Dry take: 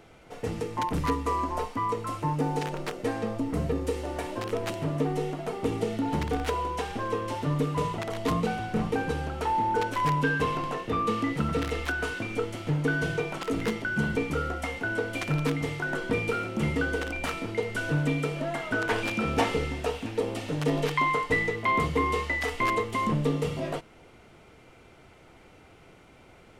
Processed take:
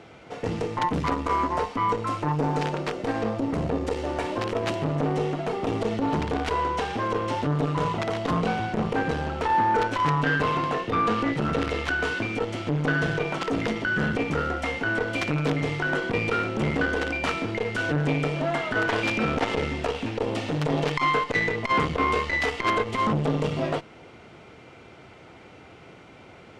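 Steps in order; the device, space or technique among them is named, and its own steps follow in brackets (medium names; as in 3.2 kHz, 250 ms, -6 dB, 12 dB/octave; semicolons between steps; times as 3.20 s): valve radio (band-pass 82–5900 Hz; valve stage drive 22 dB, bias 0.5; transformer saturation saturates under 460 Hz); trim +8.5 dB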